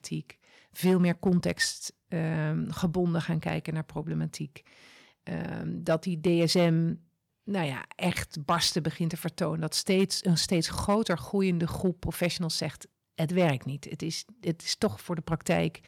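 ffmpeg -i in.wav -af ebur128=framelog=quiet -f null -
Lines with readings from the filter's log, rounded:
Integrated loudness:
  I:         -29.0 LUFS
  Threshold: -39.4 LUFS
Loudness range:
  LRA:         4.1 LU
  Threshold: -49.4 LUFS
  LRA low:   -31.9 LUFS
  LRA high:  -27.8 LUFS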